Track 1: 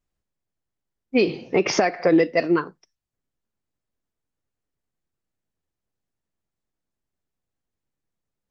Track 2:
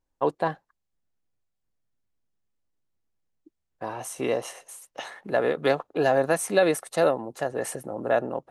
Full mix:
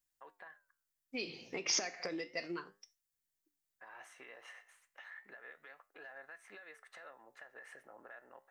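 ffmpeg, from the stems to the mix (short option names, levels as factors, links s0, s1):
-filter_complex "[0:a]acompressor=threshold=0.0501:ratio=4,crystalizer=i=9.5:c=0,volume=0.251[s0];[1:a]bandpass=f=1800:t=q:w=3.2:csg=0,acompressor=threshold=0.00708:ratio=6,alimiter=level_in=5.96:limit=0.0631:level=0:latency=1:release=161,volume=0.168,volume=1.26[s1];[s0][s1]amix=inputs=2:normalize=0,flanger=delay=8.7:depth=9.4:regen=80:speed=0.32:shape=sinusoidal"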